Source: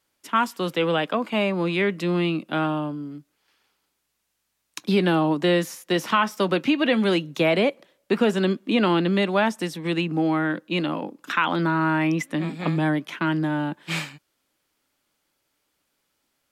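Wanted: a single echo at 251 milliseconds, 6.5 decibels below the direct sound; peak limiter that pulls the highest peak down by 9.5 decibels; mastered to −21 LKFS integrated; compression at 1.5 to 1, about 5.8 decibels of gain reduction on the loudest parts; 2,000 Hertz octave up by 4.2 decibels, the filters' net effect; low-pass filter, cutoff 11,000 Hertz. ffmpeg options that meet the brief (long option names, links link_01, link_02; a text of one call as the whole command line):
ffmpeg -i in.wav -af "lowpass=11000,equalizer=frequency=2000:width_type=o:gain=5.5,acompressor=threshold=-31dB:ratio=1.5,alimiter=limit=-19.5dB:level=0:latency=1,aecho=1:1:251:0.473,volume=7.5dB" out.wav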